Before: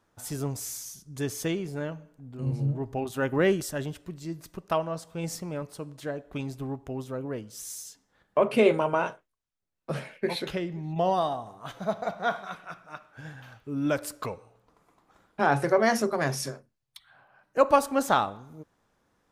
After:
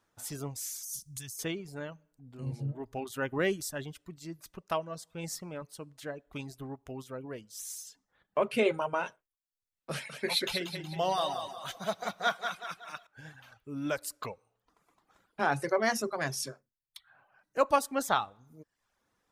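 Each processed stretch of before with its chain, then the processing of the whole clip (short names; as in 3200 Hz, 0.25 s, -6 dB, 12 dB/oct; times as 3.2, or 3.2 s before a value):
0.83–1.39 EQ curve 130 Hz 0 dB, 420 Hz -22 dB, 8700 Hz +10 dB + negative-ratio compressor -38 dBFS
9.91–13.07 high shelf 2000 Hz +9.5 dB + thinning echo 0.184 s, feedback 45%, high-pass 190 Hz, level -6 dB
whole clip: tilt shelf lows -3 dB, about 1100 Hz; reverb removal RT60 0.63 s; gain -4 dB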